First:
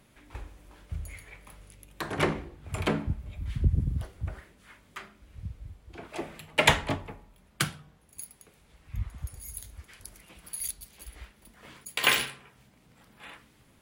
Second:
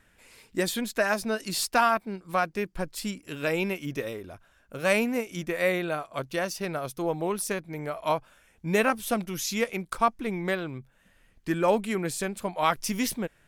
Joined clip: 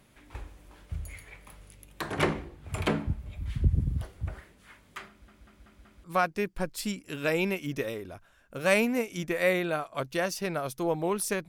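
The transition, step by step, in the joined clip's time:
first
5.09 stutter in place 0.19 s, 5 plays
6.04 switch to second from 2.23 s

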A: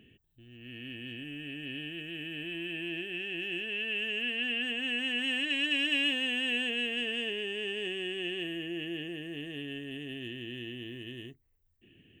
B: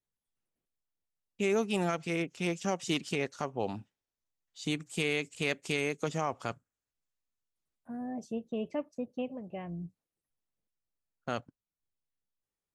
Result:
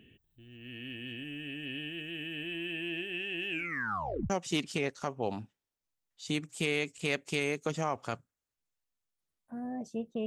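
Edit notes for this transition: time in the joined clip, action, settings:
A
3.5 tape stop 0.80 s
4.3 switch to B from 2.67 s

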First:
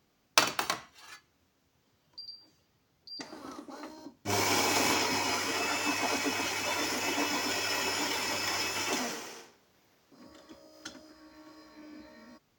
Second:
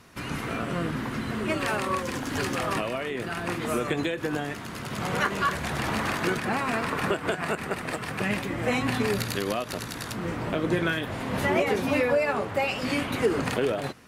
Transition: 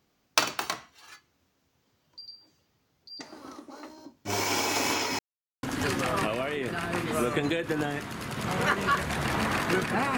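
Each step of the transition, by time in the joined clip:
first
5.19–5.63 mute
5.63 switch to second from 2.17 s

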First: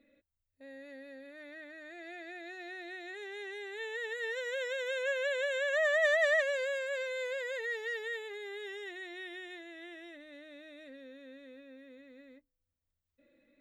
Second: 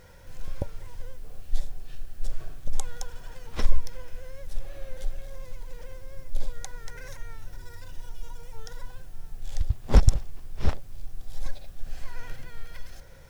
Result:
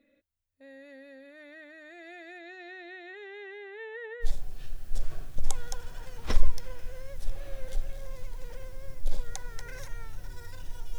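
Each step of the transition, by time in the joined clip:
first
2.38–4.28 LPF 6600 Hz -> 1400 Hz
4.24 switch to second from 1.53 s, crossfade 0.08 s

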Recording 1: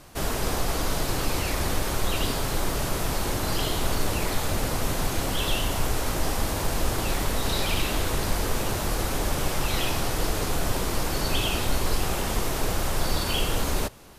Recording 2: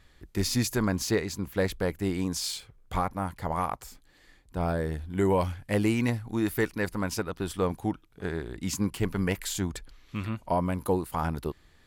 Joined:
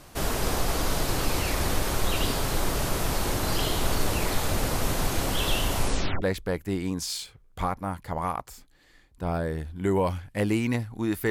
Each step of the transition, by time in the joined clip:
recording 1
5.78 tape stop 0.44 s
6.22 switch to recording 2 from 1.56 s

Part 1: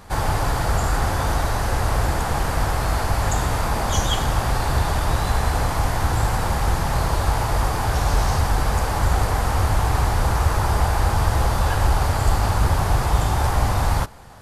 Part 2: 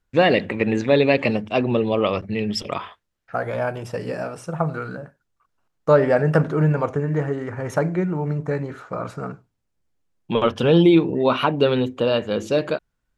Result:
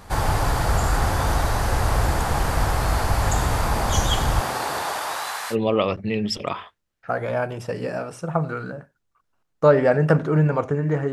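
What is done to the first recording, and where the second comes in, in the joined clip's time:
part 1
4.4–5.56 HPF 200 Hz -> 1500 Hz
5.53 switch to part 2 from 1.78 s, crossfade 0.06 s

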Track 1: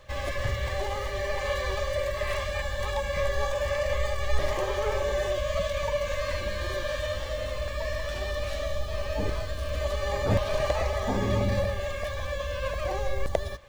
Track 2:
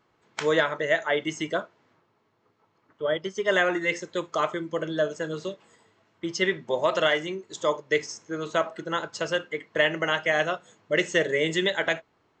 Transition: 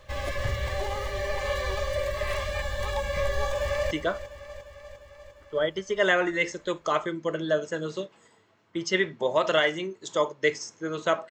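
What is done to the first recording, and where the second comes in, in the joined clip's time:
track 1
3.44–3.91 echo throw 0.35 s, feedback 70%, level -12.5 dB
3.91 switch to track 2 from 1.39 s

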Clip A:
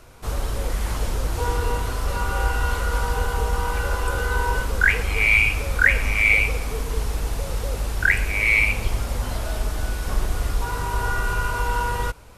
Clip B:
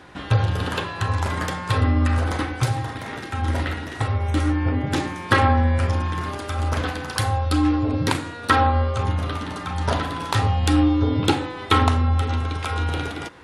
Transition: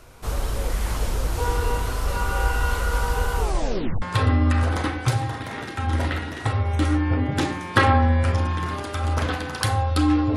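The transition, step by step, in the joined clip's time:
clip A
3.39 tape stop 0.63 s
4.02 switch to clip B from 1.57 s

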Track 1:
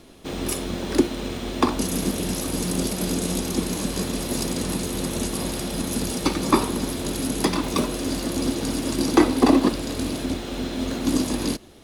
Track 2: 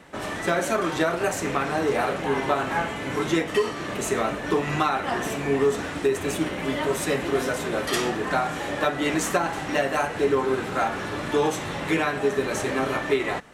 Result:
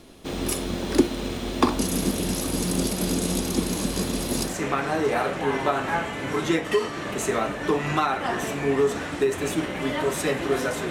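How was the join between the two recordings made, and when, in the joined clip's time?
track 1
4.51 switch to track 2 from 1.34 s, crossfade 0.18 s

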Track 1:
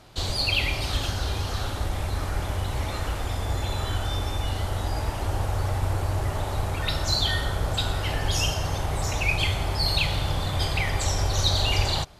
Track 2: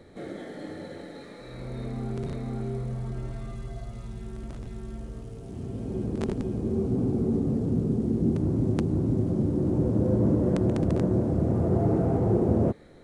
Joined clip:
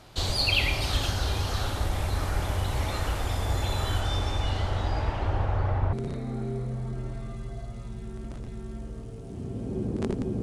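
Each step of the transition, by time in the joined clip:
track 1
4–5.93 LPF 9900 Hz -> 1500 Hz
5.93 switch to track 2 from 2.12 s

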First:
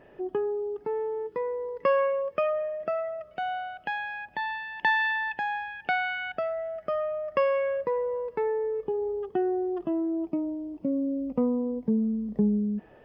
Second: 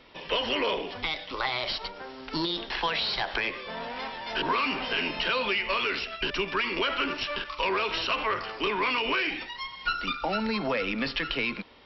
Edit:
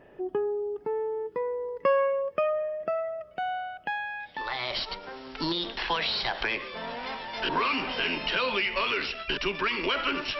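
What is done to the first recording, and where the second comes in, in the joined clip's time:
first
4.47 switch to second from 1.4 s, crossfade 0.56 s linear

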